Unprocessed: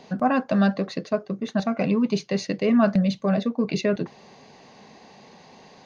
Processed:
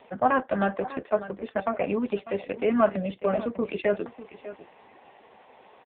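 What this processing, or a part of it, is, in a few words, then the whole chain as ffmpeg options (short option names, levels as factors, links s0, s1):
satellite phone: -af "highpass=390,lowpass=3300,aecho=1:1:597:0.178,volume=1.33" -ar 8000 -c:a libopencore_amrnb -b:a 5150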